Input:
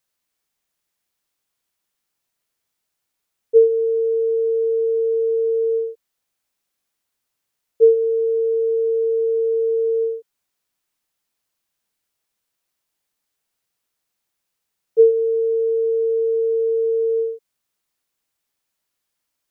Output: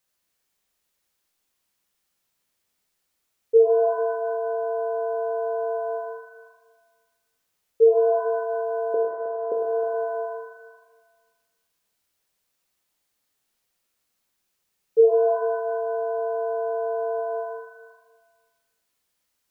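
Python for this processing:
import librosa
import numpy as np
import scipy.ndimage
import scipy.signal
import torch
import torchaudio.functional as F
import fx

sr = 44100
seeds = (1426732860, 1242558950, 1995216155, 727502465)

y = fx.bessel_lowpass(x, sr, hz=500.0, order=2, at=(8.94, 9.52))
y = fx.echo_heads(y, sr, ms=105, heads='first and third', feedback_pct=41, wet_db=-14.0)
y = fx.rev_shimmer(y, sr, seeds[0], rt60_s=1.2, semitones=7, shimmer_db=-8, drr_db=2.5)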